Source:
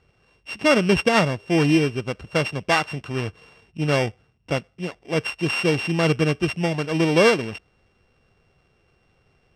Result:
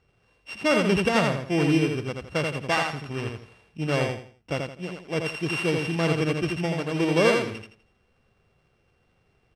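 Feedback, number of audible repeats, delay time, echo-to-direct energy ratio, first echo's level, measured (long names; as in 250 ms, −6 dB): 30%, 3, 83 ms, −3.5 dB, −4.0 dB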